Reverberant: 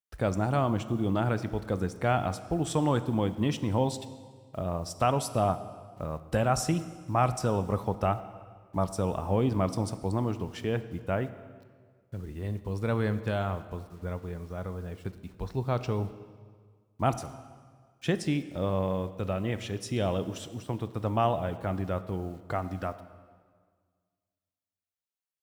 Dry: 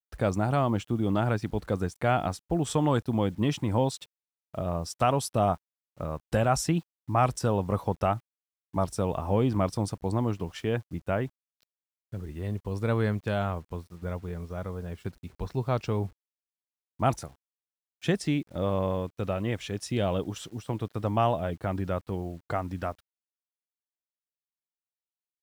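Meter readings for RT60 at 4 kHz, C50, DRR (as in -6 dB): 1.4 s, 13.5 dB, 12.0 dB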